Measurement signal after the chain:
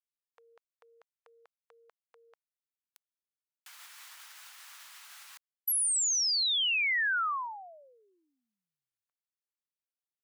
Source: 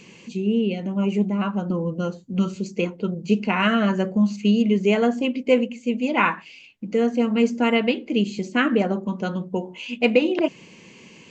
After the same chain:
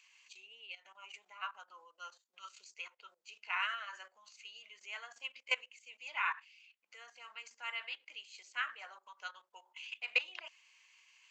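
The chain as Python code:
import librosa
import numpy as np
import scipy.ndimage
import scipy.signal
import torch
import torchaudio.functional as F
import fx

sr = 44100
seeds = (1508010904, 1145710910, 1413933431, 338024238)

y = fx.level_steps(x, sr, step_db=14)
y = scipy.signal.sosfilt(scipy.signal.butter(4, 1100.0, 'highpass', fs=sr, output='sos'), y)
y = fx.upward_expand(y, sr, threshold_db=-38.0, expansion=1.5)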